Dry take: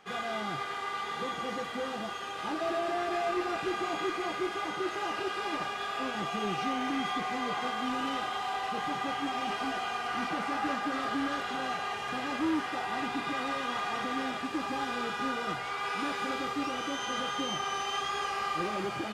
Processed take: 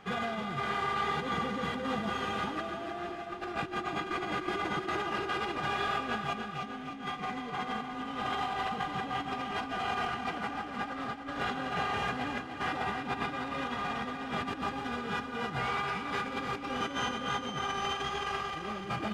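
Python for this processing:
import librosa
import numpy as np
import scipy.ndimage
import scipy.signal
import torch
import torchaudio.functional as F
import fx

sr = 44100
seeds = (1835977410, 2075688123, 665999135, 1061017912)

y = fx.bass_treble(x, sr, bass_db=10, treble_db=-6)
y = fx.over_compress(y, sr, threshold_db=-35.0, ratio=-0.5)
y = fx.echo_feedback(y, sr, ms=301, feedback_pct=56, wet_db=-8.5)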